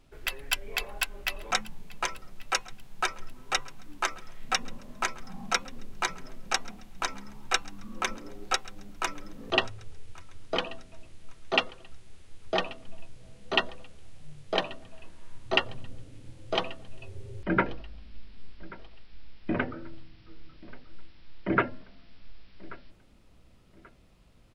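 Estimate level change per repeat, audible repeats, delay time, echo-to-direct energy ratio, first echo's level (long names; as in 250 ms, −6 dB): −9.5 dB, 2, 1,134 ms, −20.5 dB, −21.0 dB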